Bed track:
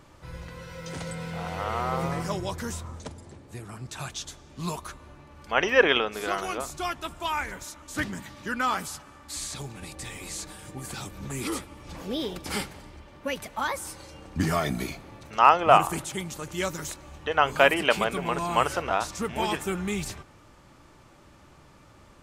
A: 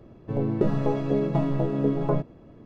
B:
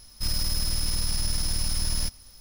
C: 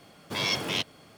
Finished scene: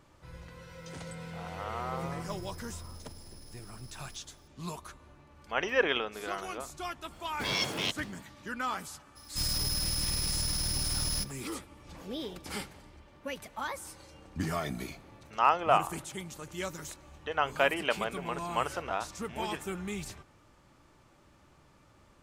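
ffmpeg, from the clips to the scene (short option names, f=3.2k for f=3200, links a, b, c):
-filter_complex "[2:a]asplit=2[a][b];[0:a]volume=-7.5dB[c];[a]acompressor=threshold=-30dB:ratio=6:attack=3.2:release=140:knee=1:detection=peak[d];[b]highpass=f=62:p=1[e];[d]atrim=end=2.4,asetpts=PTS-STARTPTS,volume=-16.5dB,afade=t=in:d=0.004:c=hsin,afade=t=out:st=2.396:d=0.004:c=hsin,adelay=2080[f];[3:a]atrim=end=1.17,asetpts=PTS-STARTPTS,volume=-3dB,afade=t=in:d=0.05,afade=t=out:st=1.12:d=0.05,adelay=7090[g];[e]atrim=end=2.4,asetpts=PTS-STARTPTS,volume=-2dB,afade=t=in:d=0.02,afade=t=out:st=2.38:d=0.02,adelay=9150[h];[c][f][g][h]amix=inputs=4:normalize=0"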